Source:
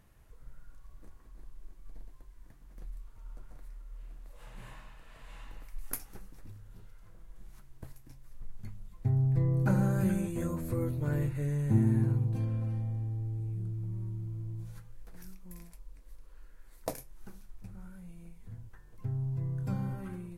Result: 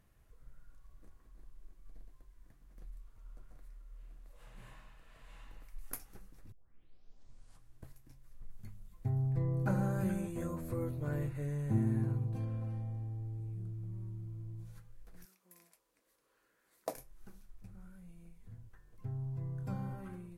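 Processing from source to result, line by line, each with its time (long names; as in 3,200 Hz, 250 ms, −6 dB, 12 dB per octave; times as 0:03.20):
0:06.52: tape start 1.32 s
0:08.50–0:09.30: high-shelf EQ 8,400 Hz +7 dB
0:15.24–0:16.94: high-pass filter 470 Hz → 220 Hz
whole clip: notch filter 900 Hz, Q 15; dynamic equaliser 810 Hz, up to +5 dB, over −51 dBFS, Q 0.86; level −6 dB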